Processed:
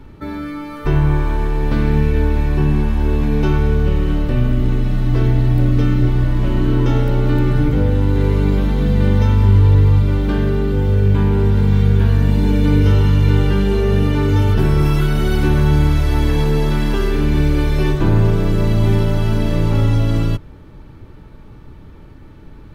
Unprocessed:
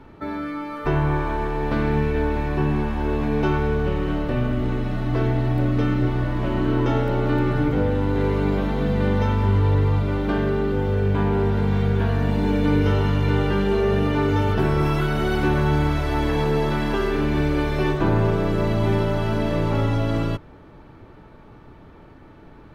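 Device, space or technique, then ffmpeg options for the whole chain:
smiley-face EQ: -af "lowshelf=f=120:g=8.5,equalizer=f=930:t=o:w=2.7:g=-5,highshelf=f=5.4k:g=7,bandreject=f=690:w=12,volume=3.5dB"

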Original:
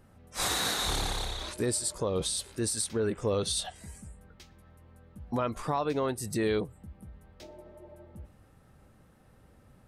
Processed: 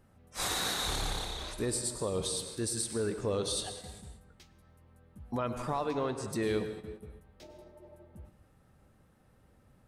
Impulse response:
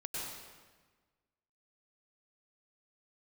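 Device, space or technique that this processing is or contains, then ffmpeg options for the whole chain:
keyed gated reverb: -filter_complex "[0:a]asettb=1/sr,asplit=3[a][b][c];[a]atrim=end=5.914[d];[b]atrim=start=5.91:end=6.33,asetpts=PTS-STARTPTS,afade=t=in:d=0.004:c=qsin,afade=t=out:st=0.416:d=0.004:c=qsin,lowpass=f=7.9k:w=0.5412,lowpass=f=7.9k:w=1.3066[e];[c]atrim=start=6.326[f];[d][e]acrossfade=d=0.004:c1=hsin:c2=qsin[g];[g][f]acrossfade=d=0.004:c1=qsin:c2=hsin,asplit=3[h][i][j];[1:a]atrim=start_sample=2205[k];[i][k]afir=irnorm=-1:irlink=0[l];[j]apad=whole_len=435431[m];[l][m]sidechaingate=range=-10dB:threshold=-49dB:ratio=16:detection=peak,volume=-6.5dB[n];[h][n]amix=inputs=2:normalize=0,volume=-5.5dB"

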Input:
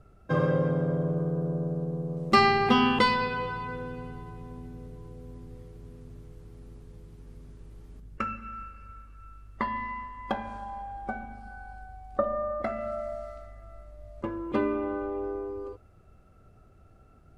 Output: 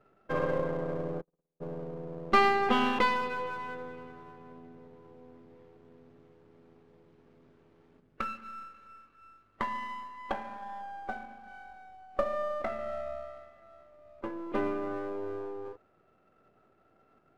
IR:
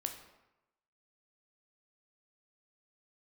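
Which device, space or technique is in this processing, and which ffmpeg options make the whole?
crystal radio: -filter_complex "[0:a]asplit=3[a][b][c];[a]afade=t=out:st=1.2:d=0.02[d];[b]agate=range=-52dB:threshold=-22dB:ratio=16:detection=peak,afade=t=in:st=1.2:d=0.02,afade=t=out:st=1.6:d=0.02[e];[c]afade=t=in:st=1.6:d=0.02[f];[d][e][f]amix=inputs=3:normalize=0,highpass=270,lowpass=2.8k,aeval=exprs='if(lt(val(0),0),0.447*val(0),val(0))':c=same"

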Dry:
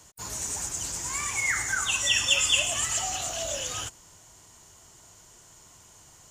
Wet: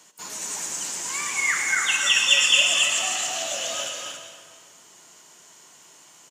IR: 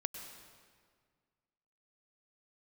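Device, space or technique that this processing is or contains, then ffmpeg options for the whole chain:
stadium PA: -filter_complex "[0:a]highpass=f=180:w=0.5412,highpass=f=180:w=1.3066,equalizer=f=2.6k:t=o:w=1.9:g=5.5,aecho=1:1:233.2|279.9:0.282|0.562[a];[1:a]atrim=start_sample=2205[b];[a][b]afir=irnorm=-1:irlink=0"

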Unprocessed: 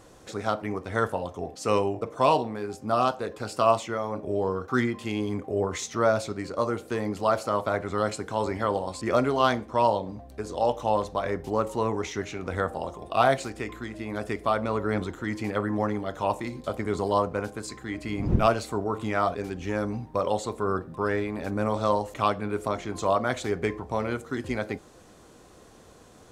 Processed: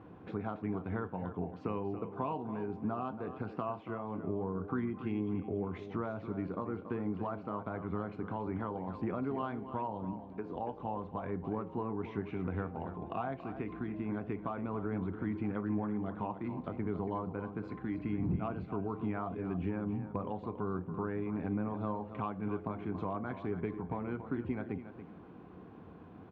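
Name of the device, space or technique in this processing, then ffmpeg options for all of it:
bass amplifier: -filter_complex "[0:a]acompressor=threshold=-36dB:ratio=3,highpass=78,equalizer=f=93:t=q:w=4:g=5,equalizer=f=180:t=q:w=4:g=9,equalizer=f=280:t=q:w=4:g=4,equalizer=f=570:t=q:w=4:g=-9,equalizer=f=1.3k:t=q:w=4:g=-4,equalizer=f=1.9k:t=q:w=4:g=-9,lowpass=f=2.2k:w=0.5412,lowpass=f=2.2k:w=1.3066,asettb=1/sr,asplit=3[a][b][c];[a]atrim=end=10.134[d];[b]atrim=start=10.13:end=10.56,asetpts=PTS-STARTPTS,afade=t=in:d=0.004:c=qsin,afade=t=out:st=0.426:d=0.004:c=qsin,highpass=f=250:p=1[e];[c]atrim=start=10.556[f];[d][e]acrossfade=d=0.004:c1=hsin:c2=qsin[g];[g][f]acrossfade=d=0.004:c1=qsin:c2=hsin,aecho=1:1:281|562|843:0.282|0.062|0.0136"

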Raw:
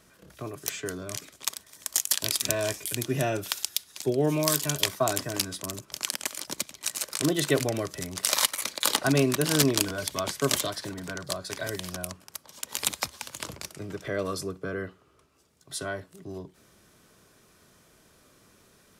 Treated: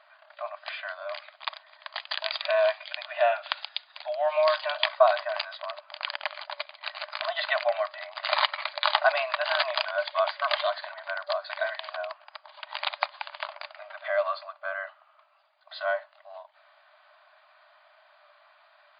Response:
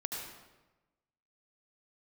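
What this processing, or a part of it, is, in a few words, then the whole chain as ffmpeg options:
through cloth: -af "lowpass=6.8k,highshelf=f=3.2k:g=-14.5,afftfilt=real='re*between(b*sr/4096,580,4900)':imag='im*between(b*sr/4096,580,4900)':win_size=4096:overlap=0.75,volume=8.5dB"

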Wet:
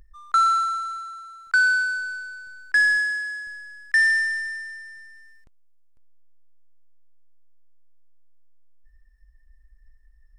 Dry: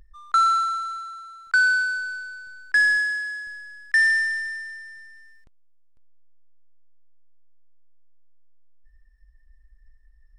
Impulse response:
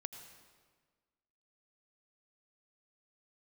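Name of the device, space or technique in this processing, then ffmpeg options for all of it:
exciter from parts: -filter_complex "[0:a]asplit=2[a][b];[b]highpass=f=3.3k:w=0.5412,highpass=f=3.3k:w=1.3066,asoftclip=type=tanh:threshold=-35.5dB,volume=-10dB[c];[a][c]amix=inputs=2:normalize=0"

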